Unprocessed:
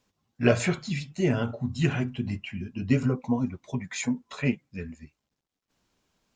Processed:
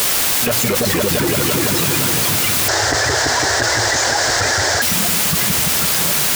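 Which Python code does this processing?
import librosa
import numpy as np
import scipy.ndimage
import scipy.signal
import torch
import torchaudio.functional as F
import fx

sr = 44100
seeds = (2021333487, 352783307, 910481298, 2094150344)

y = fx.bin_expand(x, sr, power=3.0)
y = fx.high_shelf(y, sr, hz=2300.0, db=11.5)
y = fx.level_steps(y, sr, step_db=21)
y = fx.echo_pitch(y, sr, ms=138, semitones=-3, count=3, db_per_echo=-3.0)
y = fx.quant_dither(y, sr, seeds[0], bits=6, dither='triangular')
y = scipy.signal.sosfilt(scipy.signal.butter(2, 86.0, 'highpass', fs=sr, output='sos'), y)
y = fx.echo_opening(y, sr, ms=169, hz=200, octaves=2, feedback_pct=70, wet_db=-3)
y = fx.leveller(y, sr, passes=5)
y = fx.curve_eq(y, sr, hz=(110.0, 200.0, 340.0, 720.0, 1200.0, 1700.0, 2500.0, 5200.0, 7400.0, 11000.0), db=(0, -23, 3, 10, 1, 11, -8, 5, 0, -20), at=(2.68, 4.82))
y = fx.env_flatten(y, sr, amount_pct=100)
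y = F.gain(torch.from_numpy(y), -5.5).numpy()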